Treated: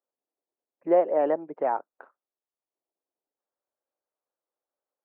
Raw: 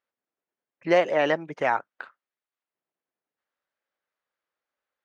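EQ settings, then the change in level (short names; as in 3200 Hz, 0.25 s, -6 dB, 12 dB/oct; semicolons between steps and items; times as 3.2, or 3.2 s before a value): Butterworth band-pass 490 Hz, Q 0.75; 0.0 dB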